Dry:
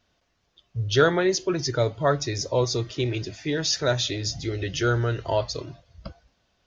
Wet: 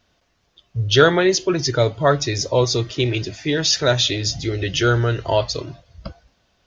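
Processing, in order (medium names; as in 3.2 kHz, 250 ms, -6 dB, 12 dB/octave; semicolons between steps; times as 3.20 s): dynamic bell 3 kHz, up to +5 dB, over -41 dBFS, Q 1.8; trim +5.5 dB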